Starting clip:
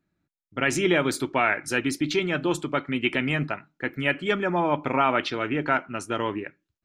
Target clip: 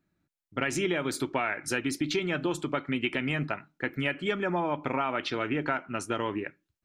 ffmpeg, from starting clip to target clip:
-af "acompressor=threshold=-25dB:ratio=6"

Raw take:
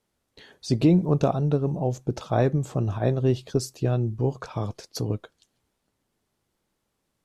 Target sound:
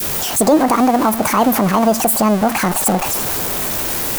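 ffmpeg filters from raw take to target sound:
-af "aeval=exprs='val(0)+0.5*0.0473*sgn(val(0))':c=same,aemphasis=mode=production:type=50fm,asetrate=76440,aresample=44100,adynamicequalizer=threshold=0.0178:dfrequency=880:dqfactor=0.85:tfrequency=880:tqfactor=0.85:attack=5:release=100:ratio=0.375:range=3:mode=boostabove:tftype=bell,alimiter=level_in=11dB:limit=-1dB:release=50:level=0:latency=1,volume=-3dB"

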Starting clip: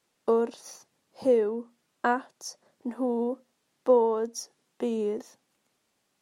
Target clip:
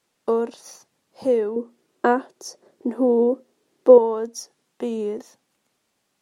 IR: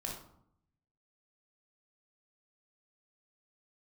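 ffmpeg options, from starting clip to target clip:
-filter_complex "[0:a]asettb=1/sr,asplit=3[a][b][c];[a]atrim=end=1.564[d];[b]atrim=start=1.56:end=3.98,asetpts=PTS-STARTPTS,afade=t=in:d=0.004:c=qsin,afade=t=out:st=2.416:d=0.004:c=qsin,equalizer=f=380:w=1.5:g=14[e];[c]atrim=start=3.976[f];[d][e]acrossfade=d=0.004:c1=hsin:c2=qsin[g];[g][f]acrossfade=d=0.004:c1=qsin:c2=hsin,volume=2.5dB"

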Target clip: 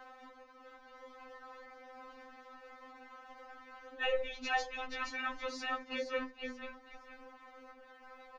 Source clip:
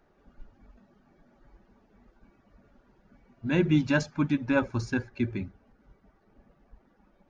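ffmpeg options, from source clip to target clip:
-filter_complex "[0:a]asplit=2[a][b];[b]acompressor=threshold=-41dB:ratio=6,volume=-1dB[c];[a][c]amix=inputs=2:normalize=0,atempo=0.87,agate=range=-33dB:threshold=-55dB:ratio=3:detection=peak,acompressor=mode=upward:threshold=-34dB:ratio=2.5,aeval=exprs='val(0)*sin(2*PI*170*n/s)':c=same,asplit=2[d][e];[e]asplit=4[f][g][h][i];[f]adelay=475,afreqshift=-34,volume=-6dB[j];[g]adelay=950,afreqshift=-68,volume=-16.5dB[k];[h]adelay=1425,afreqshift=-102,volume=-26.9dB[l];[i]adelay=1900,afreqshift=-136,volume=-37.4dB[m];[j][k][l][m]amix=inputs=4:normalize=0[n];[d][n]amix=inputs=2:normalize=0,alimiter=limit=-20.5dB:level=0:latency=1:release=106,acrossover=split=580 5800:gain=0.158 1 0.251[o][p][q];[o][p][q]amix=inputs=3:normalize=0,afftfilt=real='re*3.46*eq(mod(b,12),0)':imag='im*3.46*eq(mod(b,12),0)':win_size=2048:overlap=0.75,volume=5.5dB"

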